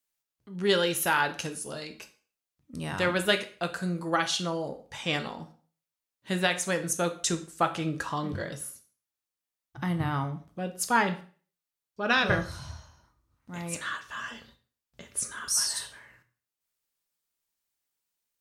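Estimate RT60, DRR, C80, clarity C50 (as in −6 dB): 0.45 s, 7.0 dB, 18.0 dB, 13.5 dB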